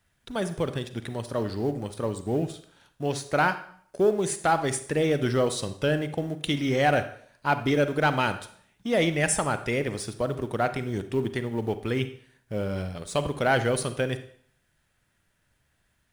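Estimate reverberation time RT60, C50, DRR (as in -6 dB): 0.55 s, 11.5 dB, 10.5 dB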